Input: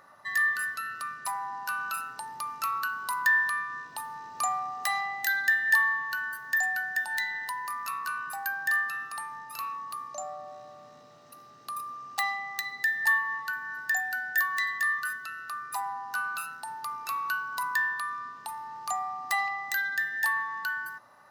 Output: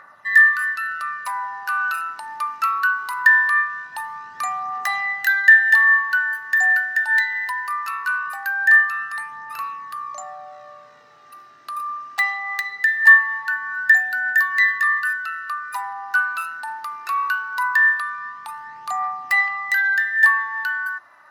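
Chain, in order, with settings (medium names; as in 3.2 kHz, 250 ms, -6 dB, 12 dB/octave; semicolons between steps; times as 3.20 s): peaking EQ 1.7 kHz +14 dB 1.8 oct; phaser 0.21 Hz, delay 3.4 ms, feedback 41%; trim -3 dB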